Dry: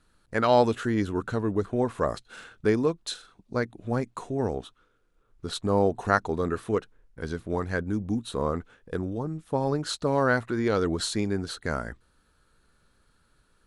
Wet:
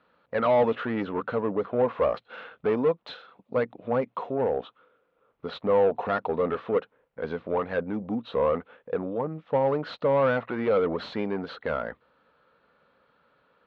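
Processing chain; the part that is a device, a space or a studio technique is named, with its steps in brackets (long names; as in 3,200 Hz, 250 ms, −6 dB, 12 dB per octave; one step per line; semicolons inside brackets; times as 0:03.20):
overdrive pedal into a guitar cabinet (mid-hump overdrive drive 25 dB, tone 1,200 Hz, clips at −5.5 dBFS; loudspeaker in its box 79–3,500 Hz, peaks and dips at 99 Hz −9 dB, 350 Hz −8 dB, 520 Hz +7 dB, 1,600 Hz −5 dB)
level −8 dB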